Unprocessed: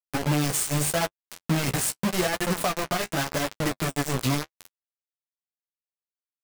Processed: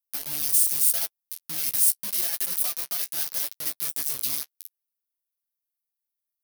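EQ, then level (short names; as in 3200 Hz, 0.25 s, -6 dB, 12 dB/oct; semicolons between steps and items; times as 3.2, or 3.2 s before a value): tone controls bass -4 dB, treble +10 dB; pre-emphasis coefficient 0.9; bell 7400 Hz -11.5 dB 0.4 oct; -1.5 dB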